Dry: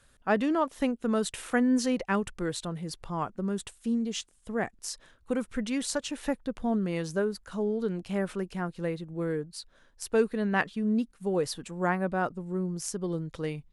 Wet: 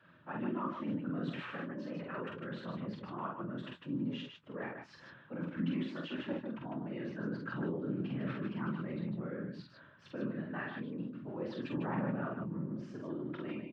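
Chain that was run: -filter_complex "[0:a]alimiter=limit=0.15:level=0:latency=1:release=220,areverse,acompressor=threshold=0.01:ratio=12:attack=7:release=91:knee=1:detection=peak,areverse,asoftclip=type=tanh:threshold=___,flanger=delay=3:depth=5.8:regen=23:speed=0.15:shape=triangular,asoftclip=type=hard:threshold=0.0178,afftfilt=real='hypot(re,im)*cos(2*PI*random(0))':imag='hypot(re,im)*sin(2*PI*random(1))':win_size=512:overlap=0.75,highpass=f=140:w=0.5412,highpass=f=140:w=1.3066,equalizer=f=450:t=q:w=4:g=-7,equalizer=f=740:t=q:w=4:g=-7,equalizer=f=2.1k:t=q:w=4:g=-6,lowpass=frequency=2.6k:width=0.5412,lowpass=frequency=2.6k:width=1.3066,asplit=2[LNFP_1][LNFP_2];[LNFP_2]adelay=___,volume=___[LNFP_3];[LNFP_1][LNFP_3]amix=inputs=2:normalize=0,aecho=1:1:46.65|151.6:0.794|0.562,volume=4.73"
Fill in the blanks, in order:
0.0335, 24, 0.266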